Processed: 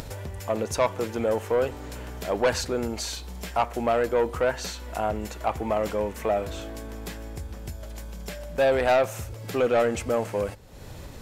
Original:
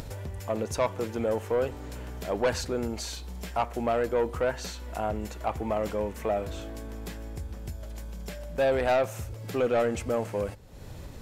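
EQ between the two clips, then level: bass shelf 370 Hz -4 dB; +4.5 dB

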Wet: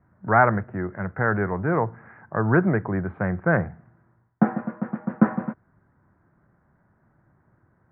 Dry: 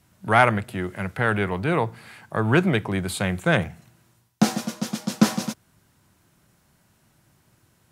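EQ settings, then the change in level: steep low-pass 1.8 kHz 48 dB/octave; 0.0 dB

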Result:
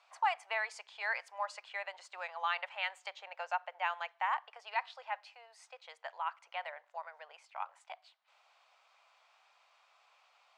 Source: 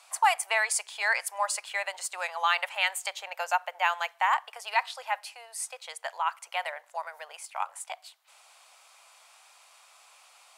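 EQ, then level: distance through air 180 m; -7.5 dB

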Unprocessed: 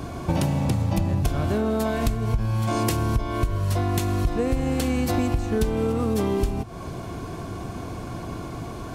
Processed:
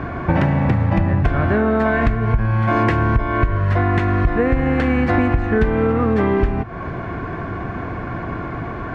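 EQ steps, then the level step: resonant low-pass 1.8 kHz, resonance Q 3.2; +6.0 dB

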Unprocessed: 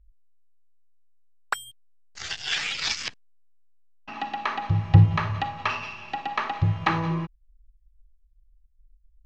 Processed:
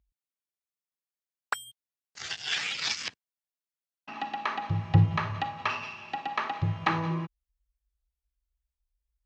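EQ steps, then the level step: high-pass 110 Hz 12 dB/octave; -3.0 dB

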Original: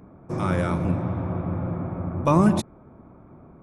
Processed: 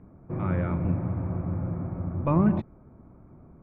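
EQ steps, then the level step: four-pole ladder low-pass 2.8 kHz, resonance 35%; tilt EQ -2.5 dB/octave; -1.5 dB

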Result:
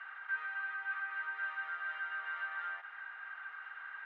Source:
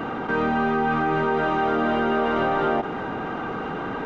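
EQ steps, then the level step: ladder high-pass 1.5 kHz, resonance 65%; low-pass 4.3 kHz 12 dB/octave; treble shelf 2.3 kHz -8 dB; -4.0 dB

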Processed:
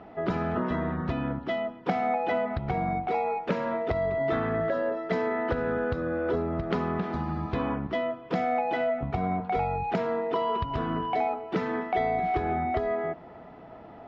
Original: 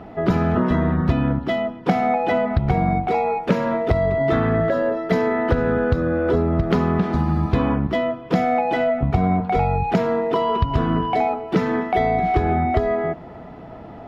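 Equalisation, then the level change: distance through air 97 m; bass shelf 250 Hz -9 dB; -5.5 dB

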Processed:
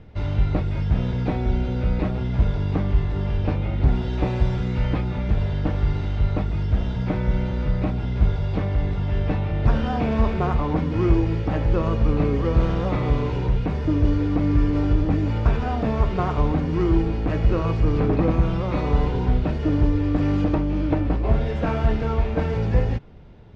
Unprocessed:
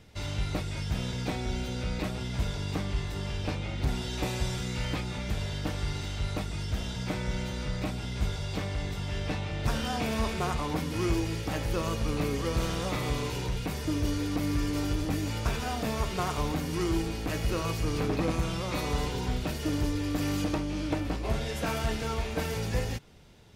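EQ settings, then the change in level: low-pass 1.1 kHz 6 dB/octave; distance through air 120 m; bass shelf 73 Hz +5.5 dB; +8.5 dB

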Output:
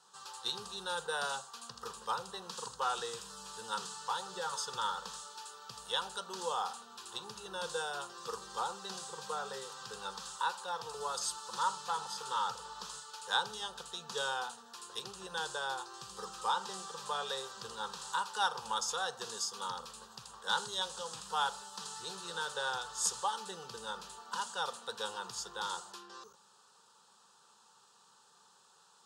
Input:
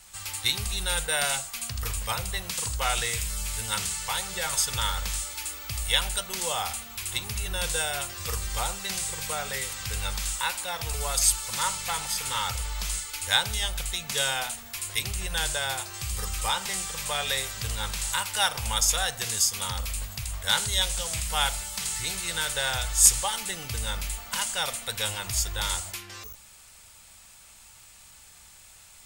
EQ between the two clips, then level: band-pass 320–3500 Hz; peaking EQ 2.4 kHz -7 dB 0.97 oct; static phaser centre 430 Hz, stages 8; 0.0 dB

